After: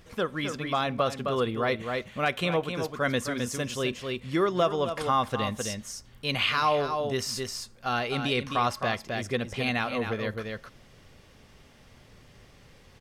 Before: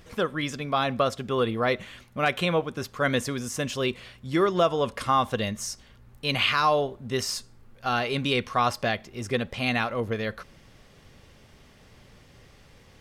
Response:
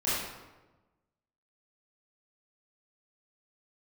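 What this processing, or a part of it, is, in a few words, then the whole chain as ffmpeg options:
ducked delay: -filter_complex "[0:a]asplit=3[link_01][link_02][link_03];[link_02]adelay=261,volume=-3.5dB[link_04];[link_03]apad=whole_len=585031[link_05];[link_04][link_05]sidechaincompress=threshold=-27dB:ratio=8:attack=11:release=322[link_06];[link_01][link_06]amix=inputs=2:normalize=0,volume=-2.5dB"

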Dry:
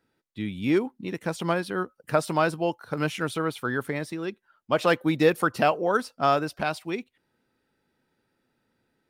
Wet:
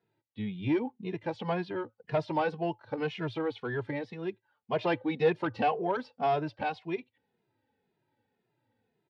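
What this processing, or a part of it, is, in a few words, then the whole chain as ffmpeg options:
barber-pole flanger into a guitar amplifier: -filter_complex "[0:a]asplit=2[link_01][link_02];[link_02]adelay=2.4,afreqshift=-1.9[link_03];[link_01][link_03]amix=inputs=2:normalize=1,asoftclip=type=tanh:threshold=-17.5dB,highpass=81,equalizer=frequency=110:width_type=q:width=4:gain=10,equalizer=frequency=450:width_type=q:width=4:gain=4,equalizer=frequency=860:width_type=q:width=4:gain=7,equalizer=frequency=1300:width_type=q:width=4:gain=-9,lowpass=frequency=4000:width=0.5412,lowpass=frequency=4000:width=1.3066,volume=-2.5dB"

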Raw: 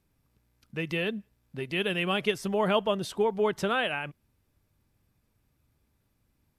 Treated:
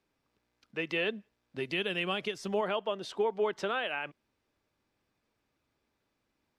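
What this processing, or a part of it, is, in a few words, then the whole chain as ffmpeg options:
DJ mixer with the lows and highs turned down: -filter_complex "[0:a]asettb=1/sr,asplit=3[link_01][link_02][link_03];[link_01]atrim=end=1.564[link_04];[link_02]atrim=start=1.56:end=2.61,asetpts=PTS-STARTPTS,afade=type=in:duration=0.004:curve=qsin,afade=type=out:start_time=1.046:duration=0.004:curve=qsin,bass=frequency=250:gain=8,treble=frequency=4000:gain=7[link_05];[link_03]atrim=start=2.606[link_06];[link_04][link_05]acrossfade=duration=0.004:curve1=hsin:curve2=qsin[link_07];[link_07][link_06]acrossfade=duration=0.004:curve1=qsin:curve2=hsin,acrossover=split=260 6600:gain=0.158 1 0.141[link_08][link_09][link_10];[link_08][link_09][link_10]amix=inputs=3:normalize=0,alimiter=limit=-20.5dB:level=0:latency=1:release=326"

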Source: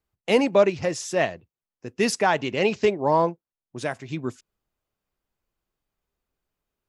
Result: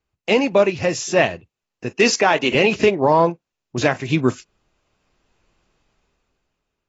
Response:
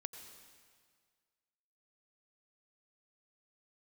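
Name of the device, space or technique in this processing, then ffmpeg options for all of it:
low-bitrate web radio: -filter_complex "[0:a]asettb=1/sr,asplit=3[link_01][link_02][link_03];[link_01]atrim=end=1.914[link_04];[link_02]atrim=start=1.91:end=2.55,asetpts=PTS-STARTPTS,afade=type=in:duration=0.004:curve=qsin,afade=type=out:start_time=0.636:duration=0.004:curve=qsin,highpass=260[link_05];[link_03]atrim=start=2.546[link_06];[link_04][link_05]acrossfade=duration=0.004:curve1=hsin:curve2=qsin[link_07];[link_07][link_06]acrossfade=duration=0.004:curve1=qsin:curve2=hsin,equalizer=frequency=2600:width=6.3:gain=5.5,dynaudnorm=framelen=200:gausssize=11:maxgain=15.5dB,alimiter=limit=-8dB:level=0:latency=1:release=203,volume=3.5dB" -ar 22050 -c:a aac -b:a 24k

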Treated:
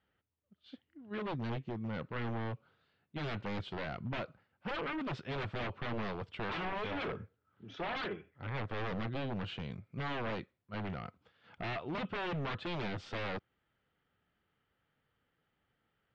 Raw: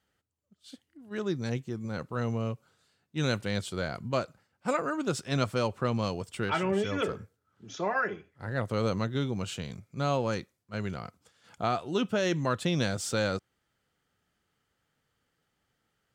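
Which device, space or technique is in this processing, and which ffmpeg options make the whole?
synthesiser wavefolder: -af "aeval=exprs='0.0316*(abs(mod(val(0)/0.0316+3,4)-2)-1)':channel_layout=same,lowpass=frequency=3400:width=0.5412,lowpass=frequency=3400:width=1.3066,volume=-2dB"

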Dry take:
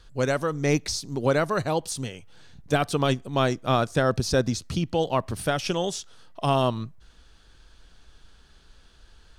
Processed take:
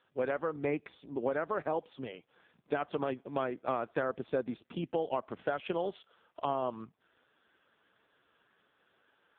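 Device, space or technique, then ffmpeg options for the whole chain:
voicemail: -af "highpass=300,lowpass=2600,acompressor=threshold=-25dB:ratio=8,volume=-2dB" -ar 8000 -c:a libopencore_amrnb -b:a 5150

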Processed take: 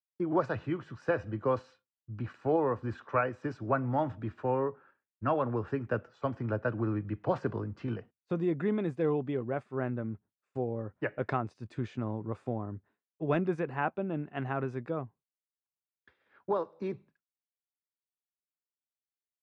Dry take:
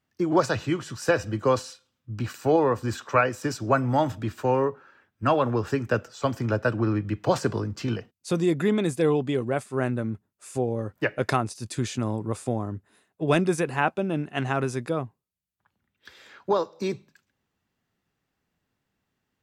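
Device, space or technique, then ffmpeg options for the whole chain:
hearing-loss simulation: -af "lowpass=1900,agate=range=-33dB:threshold=-46dB:ratio=3:detection=peak,volume=-7dB"

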